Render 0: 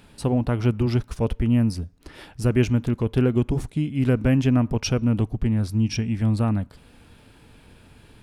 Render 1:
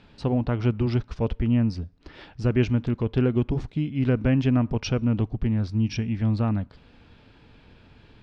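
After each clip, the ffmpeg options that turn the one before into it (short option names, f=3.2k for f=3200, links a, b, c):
-af "lowpass=f=5.1k:w=0.5412,lowpass=f=5.1k:w=1.3066,volume=-2dB"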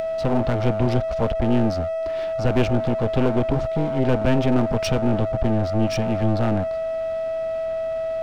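-af "aeval=exprs='val(0)+0.0398*sin(2*PI*650*n/s)':c=same,aeval=exprs='clip(val(0),-1,0.0299)':c=same,acompressor=mode=upward:threshold=-38dB:ratio=2.5,volume=6dB"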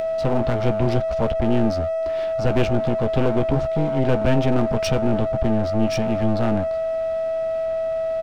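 -filter_complex "[0:a]asplit=2[a][b];[b]adelay=14,volume=-10.5dB[c];[a][c]amix=inputs=2:normalize=0"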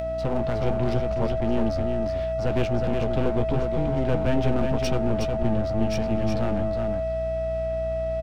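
-filter_complex "[0:a]aeval=exprs='val(0)+0.0355*(sin(2*PI*60*n/s)+sin(2*PI*2*60*n/s)/2+sin(2*PI*3*60*n/s)/3+sin(2*PI*4*60*n/s)/4+sin(2*PI*5*60*n/s)/5)':c=same,asplit=2[a][b];[b]aecho=0:1:365:0.562[c];[a][c]amix=inputs=2:normalize=0,volume=-5.5dB"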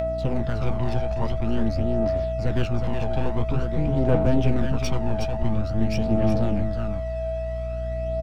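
-af "aphaser=in_gain=1:out_gain=1:delay=1.3:decay=0.51:speed=0.48:type=triangular,volume=-2dB"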